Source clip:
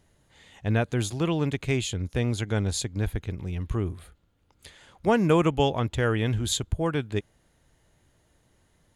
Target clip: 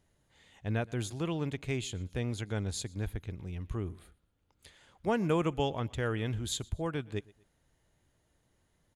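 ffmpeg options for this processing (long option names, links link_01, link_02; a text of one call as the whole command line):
ffmpeg -i in.wav -af "aecho=1:1:121|242:0.0631|0.0227,volume=-8dB" out.wav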